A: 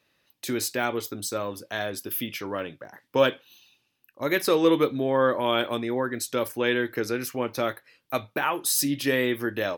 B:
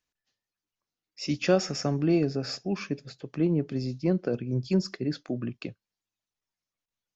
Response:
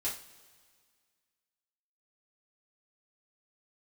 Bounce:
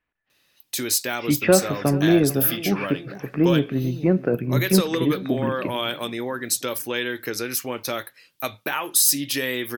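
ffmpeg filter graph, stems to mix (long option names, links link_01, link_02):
-filter_complex "[0:a]acompressor=threshold=-24dB:ratio=3,adelay=300,volume=-0.5dB[link_01];[1:a]lowpass=frequency=2200:width=0.5412,lowpass=frequency=2200:width=1.3066,acontrast=75,volume=-1dB,asplit=3[link_02][link_03][link_04];[link_03]volume=-17dB[link_05];[link_04]volume=-17dB[link_06];[2:a]atrim=start_sample=2205[link_07];[link_05][link_07]afir=irnorm=-1:irlink=0[link_08];[link_06]aecho=0:1:437|874|1311|1748|2185|2622:1|0.45|0.202|0.0911|0.041|0.0185[link_09];[link_01][link_02][link_08][link_09]amix=inputs=4:normalize=0,highshelf=frequency=2500:gain=11"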